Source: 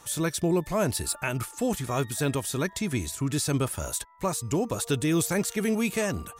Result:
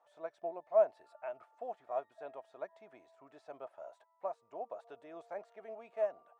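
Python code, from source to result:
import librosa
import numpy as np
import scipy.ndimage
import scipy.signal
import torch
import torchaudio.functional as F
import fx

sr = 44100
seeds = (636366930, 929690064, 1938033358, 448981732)

y = fx.ladder_bandpass(x, sr, hz=710.0, resonance_pct=75)
y = fx.upward_expand(y, sr, threshold_db=-41.0, expansion=1.5)
y = F.gain(torch.from_numpy(y), 2.0).numpy()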